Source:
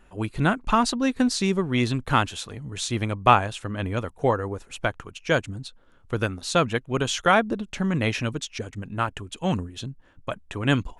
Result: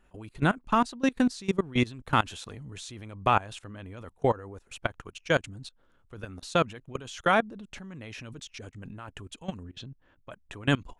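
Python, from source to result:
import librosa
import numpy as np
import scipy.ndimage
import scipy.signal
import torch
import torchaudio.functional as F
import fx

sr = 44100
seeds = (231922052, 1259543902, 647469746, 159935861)

y = fx.lowpass(x, sr, hz=4400.0, slope=12, at=(9.63, 10.31))
y = fx.level_steps(y, sr, step_db=21)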